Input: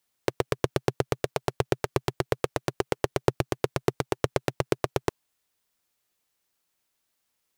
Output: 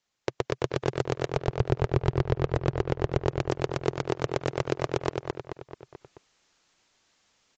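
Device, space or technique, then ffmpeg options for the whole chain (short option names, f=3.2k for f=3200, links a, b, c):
low-bitrate web radio: -filter_complex "[0:a]asettb=1/sr,asplit=3[a][b][c];[a]atrim=end=1.364[d];[b]atrim=start=1.36:end=3.24,asetpts=PTS-STARTPTS,afade=t=in:d=0.004:c=qsin,afade=t=out:st=1.876:d=0.004:c=qsin,aemphasis=mode=reproduction:type=bsi[e];[c]atrim=start=3.236[f];[d][e]acrossfade=d=0.004:c1=hsin:c2=qsin[g];[g][f]acrossfade=d=0.004:c1=qsin:c2=hsin,asplit=2[h][i];[i]adelay=217,lowpass=f=4.4k:p=1,volume=-10dB,asplit=2[j][k];[k]adelay=217,lowpass=f=4.4k:p=1,volume=0.47,asplit=2[l][m];[m]adelay=217,lowpass=f=4.4k:p=1,volume=0.47,asplit=2[n][o];[o]adelay=217,lowpass=f=4.4k:p=1,volume=0.47,asplit=2[p][q];[q]adelay=217,lowpass=f=4.4k:p=1,volume=0.47[r];[h][j][l][n][p][r]amix=inputs=6:normalize=0,dynaudnorm=f=380:g=3:m=12.5dB,alimiter=limit=-9dB:level=0:latency=1:release=60" -ar 16000 -c:a aac -b:a 48k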